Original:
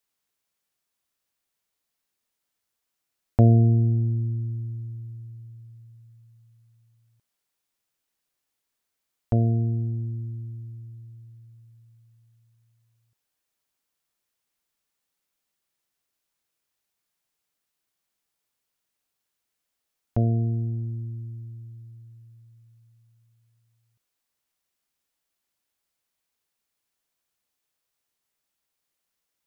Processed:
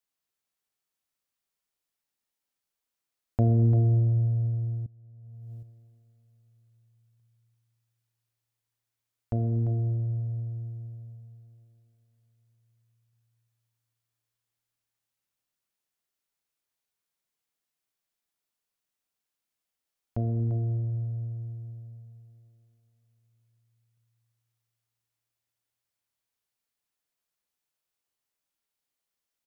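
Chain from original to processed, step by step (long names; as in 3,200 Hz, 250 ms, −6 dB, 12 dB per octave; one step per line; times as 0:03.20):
single-tap delay 345 ms −10 dB
four-comb reverb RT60 3.6 s, combs from 26 ms, DRR 5.5 dB
0:04.86–0:05.63: compressor whose output falls as the input rises −40 dBFS, ratio −1
level −7 dB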